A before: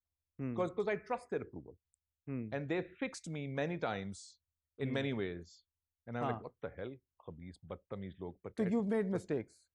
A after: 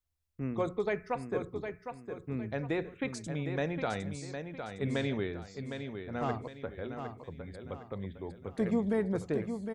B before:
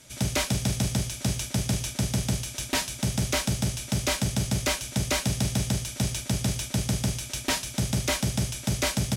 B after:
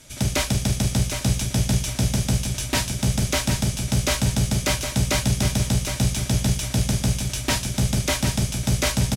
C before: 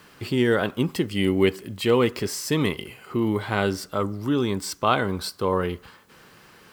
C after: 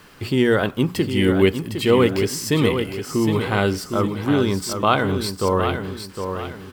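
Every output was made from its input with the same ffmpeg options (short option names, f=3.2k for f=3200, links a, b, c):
-af "lowshelf=f=67:g=11,bandreject=f=60:t=h:w=6,bandreject=f=120:t=h:w=6,bandreject=f=180:t=h:w=6,aecho=1:1:759|1518|2277|3036:0.422|0.152|0.0547|0.0197,volume=3dB"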